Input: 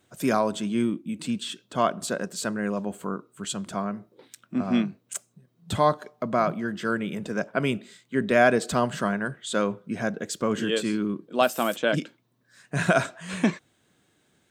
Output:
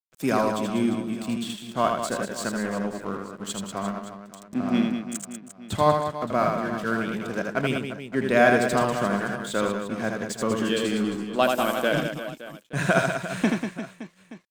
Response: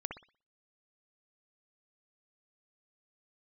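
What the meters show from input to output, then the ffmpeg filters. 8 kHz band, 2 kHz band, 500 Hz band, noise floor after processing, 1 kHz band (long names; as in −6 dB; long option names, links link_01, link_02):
0.0 dB, +2.0 dB, +1.5 dB, −53 dBFS, +1.5 dB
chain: -filter_complex "[0:a]aeval=exprs='sgn(val(0))*max(abs(val(0))-0.00891,0)':channel_layout=same,asplit=2[link_01][link_02];[link_02]aecho=0:1:80|192|348.8|568.3|875.6:0.631|0.398|0.251|0.158|0.1[link_03];[link_01][link_03]amix=inputs=2:normalize=0"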